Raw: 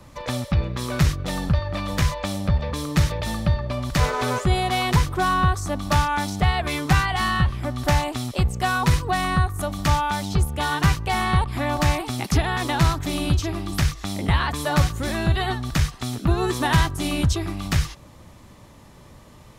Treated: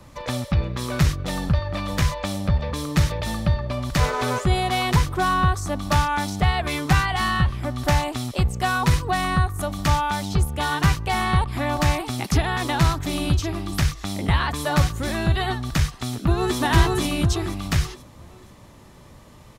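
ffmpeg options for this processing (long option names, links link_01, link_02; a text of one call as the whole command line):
ffmpeg -i in.wav -filter_complex "[0:a]asplit=2[link_01][link_02];[link_02]afade=type=in:start_time=15.91:duration=0.01,afade=type=out:start_time=16.58:duration=0.01,aecho=0:1:480|960|1440|1920|2400:0.891251|0.311938|0.109178|0.0382124|0.0133743[link_03];[link_01][link_03]amix=inputs=2:normalize=0" out.wav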